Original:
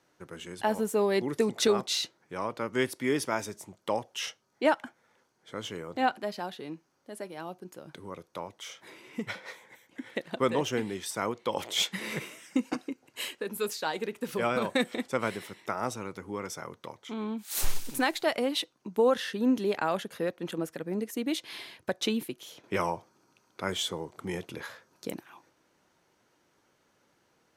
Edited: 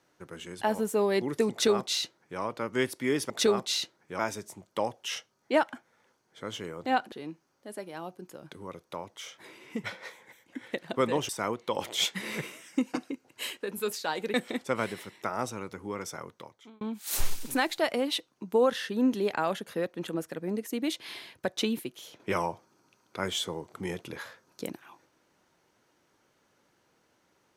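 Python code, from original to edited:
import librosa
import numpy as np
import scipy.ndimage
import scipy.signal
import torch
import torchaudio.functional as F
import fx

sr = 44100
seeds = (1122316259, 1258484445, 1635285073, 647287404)

y = fx.edit(x, sr, fx.duplicate(start_s=1.51, length_s=0.89, to_s=3.3),
    fx.cut(start_s=6.23, length_s=0.32),
    fx.cut(start_s=10.72, length_s=0.35),
    fx.cut(start_s=14.12, length_s=0.66),
    fx.fade_out_span(start_s=16.65, length_s=0.6), tone=tone)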